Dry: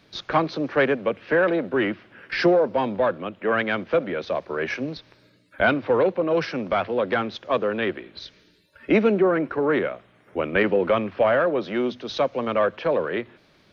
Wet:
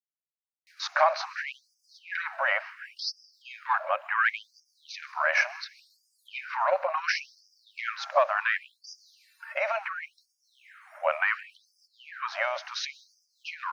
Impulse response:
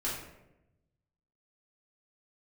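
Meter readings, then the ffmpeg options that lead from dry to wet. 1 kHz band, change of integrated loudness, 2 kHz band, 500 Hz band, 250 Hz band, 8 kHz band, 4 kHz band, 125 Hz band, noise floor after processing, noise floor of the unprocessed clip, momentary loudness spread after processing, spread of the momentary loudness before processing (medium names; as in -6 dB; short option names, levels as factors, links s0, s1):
-2.5 dB, -5.5 dB, -1.5 dB, -12.5 dB, under -40 dB, no reading, -2.5 dB, under -40 dB, -81 dBFS, -58 dBFS, 19 LU, 11 LU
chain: -filter_complex "[0:a]acrossover=split=200[s0][s1];[s1]adelay=670[s2];[s0][s2]amix=inputs=2:normalize=0,alimiter=limit=0.119:level=0:latency=1:release=17,agate=range=0.0224:threshold=0.00794:ratio=3:detection=peak,equalizer=f=3400:w=2.6:g=-14.5,asplit=2[s3][s4];[1:a]atrim=start_sample=2205,adelay=128[s5];[s4][s5]afir=irnorm=-1:irlink=0,volume=0.0562[s6];[s3][s6]amix=inputs=2:normalize=0,afftfilt=real='re*gte(b*sr/1024,520*pow(4800/520,0.5+0.5*sin(2*PI*0.7*pts/sr)))':imag='im*gte(b*sr/1024,520*pow(4800/520,0.5+0.5*sin(2*PI*0.7*pts/sr)))':win_size=1024:overlap=0.75,volume=2.66"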